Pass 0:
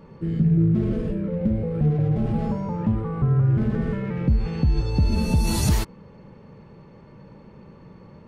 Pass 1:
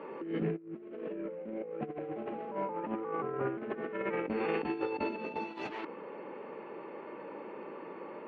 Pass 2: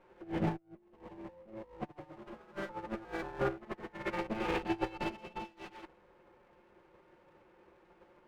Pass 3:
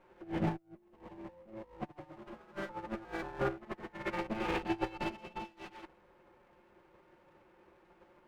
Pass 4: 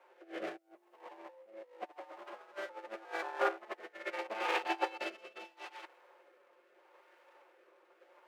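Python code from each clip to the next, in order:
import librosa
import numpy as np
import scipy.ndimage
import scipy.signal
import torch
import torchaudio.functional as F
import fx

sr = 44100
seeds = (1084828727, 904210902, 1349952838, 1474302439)

y1 = scipy.signal.sosfilt(scipy.signal.cheby1(3, 1.0, [320.0, 2700.0], 'bandpass', fs=sr, output='sos'), x)
y1 = fx.over_compress(y1, sr, threshold_db=-38.0, ratio=-0.5)
y1 = y1 * librosa.db_to_amplitude(2.5)
y2 = fx.lower_of_two(y1, sr, delay_ms=5.6)
y2 = fx.upward_expand(y2, sr, threshold_db=-46.0, expansion=2.5)
y2 = y2 * librosa.db_to_amplitude(4.5)
y3 = fx.peak_eq(y2, sr, hz=460.0, db=-5.5, octaves=0.2)
y4 = scipy.signal.sosfilt(scipy.signal.butter(4, 480.0, 'highpass', fs=sr, output='sos'), y3)
y4 = fx.rotary(y4, sr, hz=0.8)
y4 = y4 * librosa.db_to_amplitude(5.5)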